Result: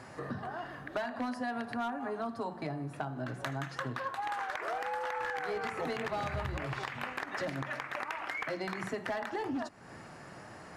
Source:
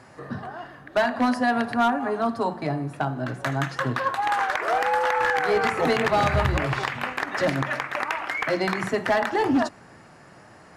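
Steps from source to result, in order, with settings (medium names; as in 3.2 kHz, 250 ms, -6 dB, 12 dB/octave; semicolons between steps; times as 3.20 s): compression 4:1, threshold -36 dBFS, peak gain reduction 15 dB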